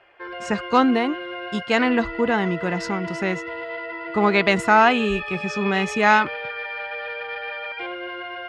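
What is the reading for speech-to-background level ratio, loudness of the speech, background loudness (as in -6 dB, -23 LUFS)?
9.5 dB, -21.0 LUFS, -30.5 LUFS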